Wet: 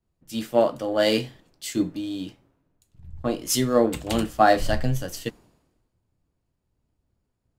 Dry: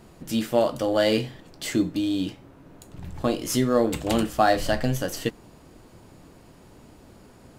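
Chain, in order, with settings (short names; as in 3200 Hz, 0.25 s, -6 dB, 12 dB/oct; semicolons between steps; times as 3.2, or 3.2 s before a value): three-band expander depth 100%; gain -2.5 dB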